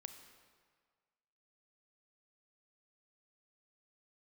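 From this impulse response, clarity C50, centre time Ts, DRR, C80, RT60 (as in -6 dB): 8.0 dB, 25 ms, 7.5 dB, 9.5 dB, 1.7 s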